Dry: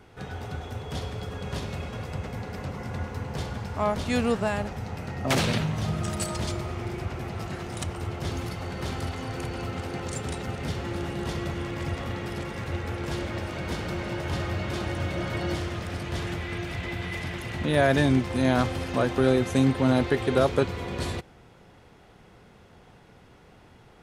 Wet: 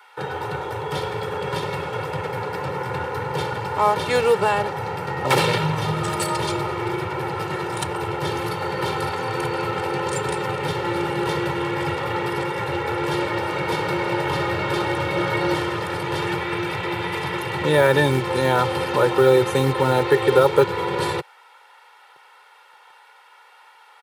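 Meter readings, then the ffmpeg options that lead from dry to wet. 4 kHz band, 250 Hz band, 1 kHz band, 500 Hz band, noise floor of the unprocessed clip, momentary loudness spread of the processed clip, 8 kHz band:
+7.0 dB, +1.5 dB, +11.0 dB, +8.5 dB, -54 dBFS, 10 LU, +4.0 dB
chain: -filter_complex "[0:a]lowshelf=f=240:g=5.5,acrossover=split=770[a][b];[a]acrusher=bits=5:mix=0:aa=0.5[c];[c][b]amix=inputs=2:normalize=0,equalizer=f=250:t=o:w=0.67:g=-6,equalizer=f=1k:t=o:w=0.67:g=5,equalizer=f=6.3k:t=o:w=0.67:g=-7,asplit=2[d][e];[e]alimiter=limit=-17.5dB:level=0:latency=1:release=116,volume=1dB[f];[d][f]amix=inputs=2:normalize=0,highpass=f=150:w=0.5412,highpass=f=150:w=1.3066,aecho=1:1:2.2:0.82"

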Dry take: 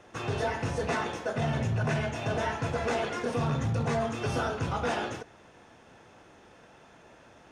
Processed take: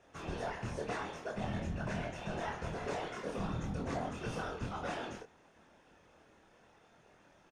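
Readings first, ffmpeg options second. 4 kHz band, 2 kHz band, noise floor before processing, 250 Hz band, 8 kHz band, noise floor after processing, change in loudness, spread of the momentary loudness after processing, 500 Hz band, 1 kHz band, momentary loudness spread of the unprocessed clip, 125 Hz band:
-9.0 dB, -9.0 dB, -56 dBFS, -7.5 dB, -9.0 dB, -65 dBFS, -9.0 dB, 3 LU, -9.5 dB, -8.5 dB, 4 LU, -11.0 dB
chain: -filter_complex "[0:a]afftfilt=real='hypot(re,im)*cos(2*PI*random(0))':imag='hypot(re,im)*sin(2*PI*random(1))':win_size=512:overlap=0.75,asplit=2[a][b];[b]adelay=25,volume=-4dB[c];[a][c]amix=inputs=2:normalize=0,volume=-4.5dB"

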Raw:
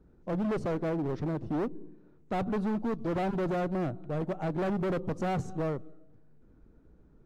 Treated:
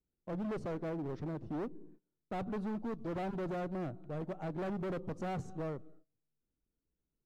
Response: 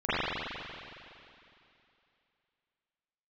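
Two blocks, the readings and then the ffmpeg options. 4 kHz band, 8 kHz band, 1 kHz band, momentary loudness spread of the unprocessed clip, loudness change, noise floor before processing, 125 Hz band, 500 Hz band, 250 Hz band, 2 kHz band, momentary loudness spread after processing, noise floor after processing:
-7.5 dB, n/a, -7.5 dB, 4 LU, -7.5 dB, -59 dBFS, -7.5 dB, -7.5 dB, -7.5 dB, -7.5 dB, 4 LU, under -85 dBFS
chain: -af "agate=range=-22dB:threshold=-49dB:ratio=16:detection=peak,volume=-7.5dB"

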